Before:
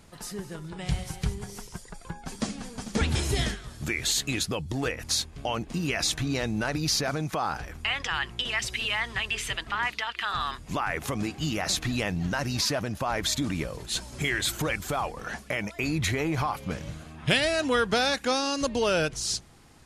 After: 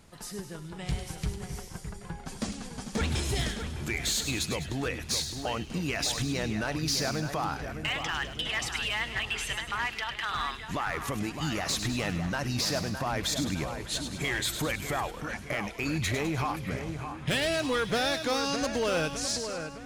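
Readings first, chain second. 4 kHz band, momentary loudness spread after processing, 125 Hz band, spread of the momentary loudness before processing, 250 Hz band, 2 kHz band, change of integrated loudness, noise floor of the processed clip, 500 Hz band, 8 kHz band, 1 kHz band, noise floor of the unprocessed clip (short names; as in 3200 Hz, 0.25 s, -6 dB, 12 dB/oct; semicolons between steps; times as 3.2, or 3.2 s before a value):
-2.5 dB, 9 LU, -2.0 dB, 10 LU, -2.0 dB, -2.5 dB, -2.5 dB, -43 dBFS, -2.5 dB, -2.0 dB, -2.5 dB, -48 dBFS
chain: hard clip -21 dBFS, distortion -17 dB; split-band echo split 2500 Hz, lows 0.611 s, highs 0.102 s, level -8 dB; gain -2.5 dB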